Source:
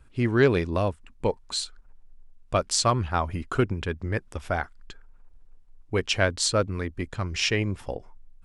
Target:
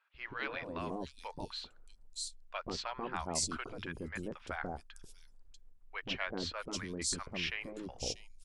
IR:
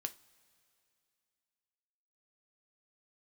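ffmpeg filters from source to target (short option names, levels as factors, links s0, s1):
-filter_complex "[0:a]acrossover=split=820|4200[s0][s1][s2];[s0]adelay=140[s3];[s2]adelay=640[s4];[s3][s1][s4]amix=inputs=3:normalize=0,afftfilt=real='re*lt(hypot(re,im),0.224)':imag='im*lt(hypot(re,im),0.224)':win_size=1024:overlap=0.75,volume=0.447"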